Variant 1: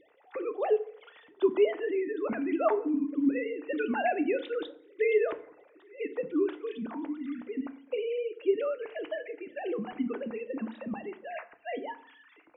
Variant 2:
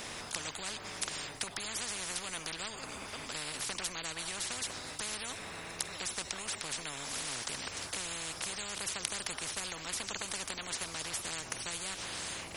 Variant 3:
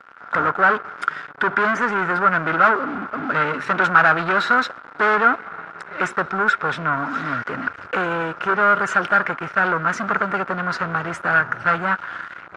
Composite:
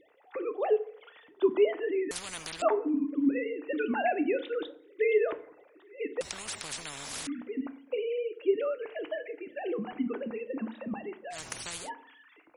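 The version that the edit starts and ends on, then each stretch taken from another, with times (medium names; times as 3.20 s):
1
2.11–2.62 s: from 2
6.21–7.27 s: from 2
11.35–11.85 s: from 2, crossfade 0.10 s
not used: 3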